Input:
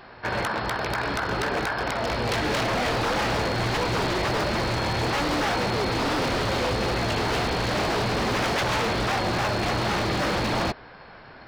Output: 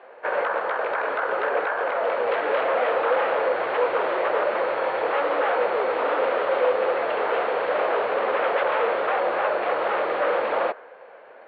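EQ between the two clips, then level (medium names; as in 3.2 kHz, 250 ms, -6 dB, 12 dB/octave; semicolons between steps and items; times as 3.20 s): inverse Chebyshev low-pass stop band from 5.8 kHz, stop band 40 dB; dynamic bell 1.3 kHz, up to +7 dB, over -42 dBFS, Q 1.3; resonant high-pass 510 Hz, resonance Q 4.9; -5.0 dB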